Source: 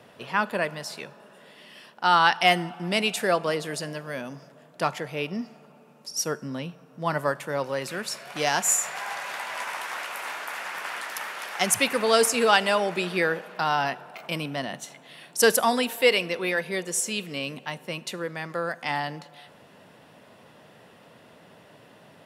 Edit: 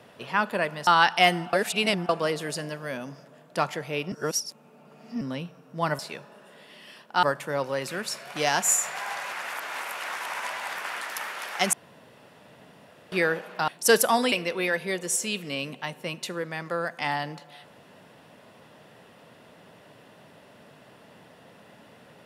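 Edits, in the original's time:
0:00.87–0:02.11: move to 0:07.23
0:02.77–0:03.33: reverse
0:05.36–0:06.45: reverse
0:09.32–0:10.75: reverse
0:11.73–0:13.12: fill with room tone
0:13.68–0:15.22: remove
0:15.86–0:16.16: remove

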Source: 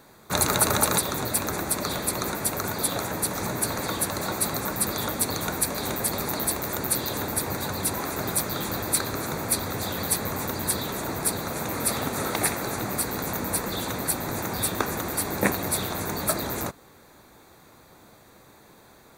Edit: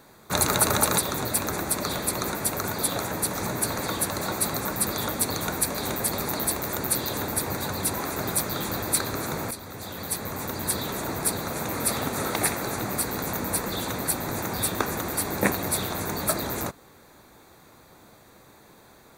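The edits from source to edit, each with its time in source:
0:09.51–0:10.88: fade in, from −12 dB

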